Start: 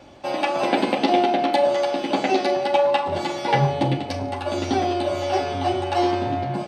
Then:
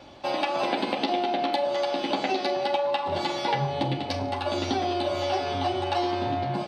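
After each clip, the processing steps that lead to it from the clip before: graphic EQ 1000/4000/8000 Hz +3/+7/-4 dB; compressor, threshold -20 dBFS, peak gain reduction 8 dB; gain -2.5 dB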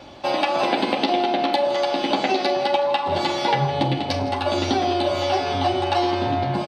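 echo 0.164 s -16 dB; gain +5.5 dB

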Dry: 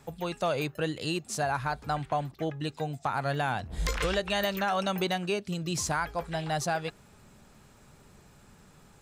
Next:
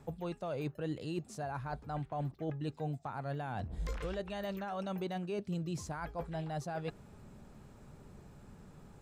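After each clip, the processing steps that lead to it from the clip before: reverse; compressor, threshold -36 dBFS, peak gain reduction 11.5 dB; reverse; tilt shelf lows +6 dB, about 1100 Hz; gain -3 dB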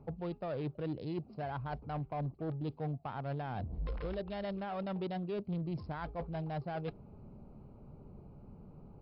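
Wiener smoothing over 25 samples; soft clip -31.5 dBFS, distortion -20 dB; gain +2.5 dB; MP3 64 kbps 12000 Hz

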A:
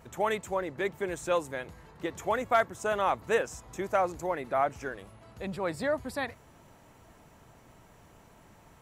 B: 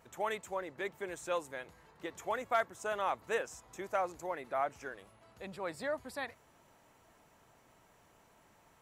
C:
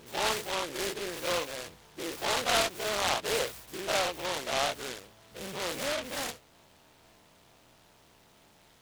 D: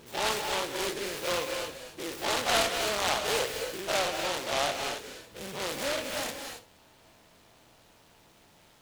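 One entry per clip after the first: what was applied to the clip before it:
low shelf 270 Hz -9.5 dB; gain -5.5 dB
spectral dilation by 0.12 s; noise-modulated delay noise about 2300 Hz, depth 0.16 ms
reverb, pre-delay 3 ms, DRR 4.5 dB

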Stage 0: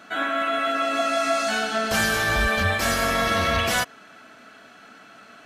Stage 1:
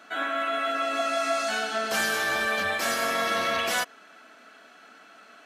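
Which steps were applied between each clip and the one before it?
HPF 280 Hz 12 dB/oct; gain -3.5 dB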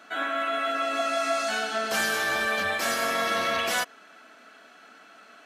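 nothing audible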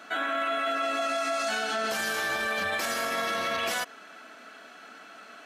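limiter -24.5 dBFS, peak gain reduction 10 dB; gain +3.5 dB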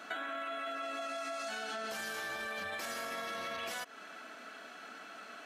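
compressor 12:1, threshold -35 dBFS, peak gain reduction 10 dB; gain -1.5 dB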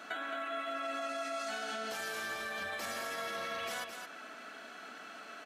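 echo 0.217 s -6.5 dB

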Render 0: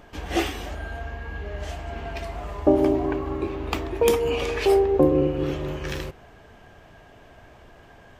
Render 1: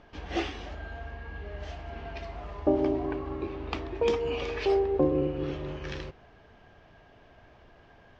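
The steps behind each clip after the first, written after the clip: inverse Chebyshev low-pass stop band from 9900 Hz, stop band 40 dB; gain -6.5 dB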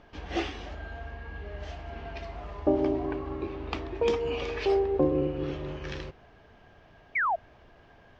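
painted sound fall, 7.15–7.36, 620–2400 Hz -26 dBFS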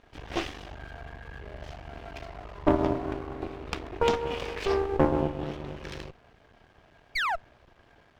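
half-wave rectifier; added harmonics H 7 -25 dB, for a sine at -12 dBFS; gain +6 dB

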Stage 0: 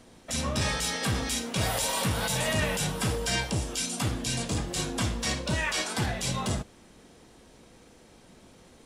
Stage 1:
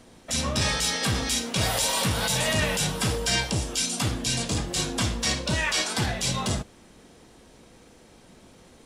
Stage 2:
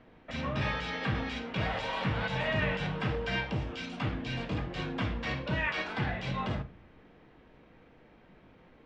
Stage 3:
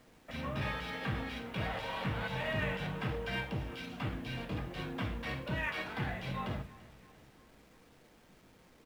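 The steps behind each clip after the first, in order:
dynamic EQ 4700 Hz, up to +4 dB, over -41 dBFS, Q 0.77; gain +2 dB
ladder low-pass 3000 Hz, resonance 25%; reverb RT60 0.40 s, pre-delay 6 ms, DRR 11 dB
median filter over 5 samples; bit-crush 10-bit; feedback echo 0.342 s, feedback 53%, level -20 dB; gain -4.5 dB

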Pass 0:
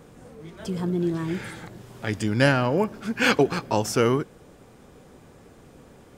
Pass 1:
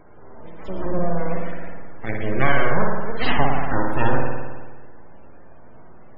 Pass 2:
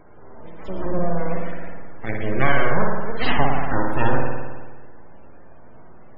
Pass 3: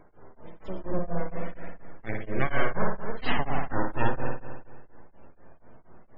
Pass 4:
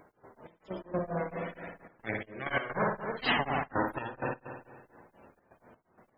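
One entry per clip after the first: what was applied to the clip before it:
full-wave rectifier; spring tank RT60 1.4 s, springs 53 ms, chirp 65 ms, DRR -1 dB; loudest bins only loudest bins 64; gain +1.5 dB
nothing audible
beating tremolo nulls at 4.2 Hz; gain -4.5 dB
HPF 170 Hz 6 dB/oct; high shelf 3200 Hz +9.5 dB; step gate "x.xx..x.xxxxxxx" 128 bpm -12 dB

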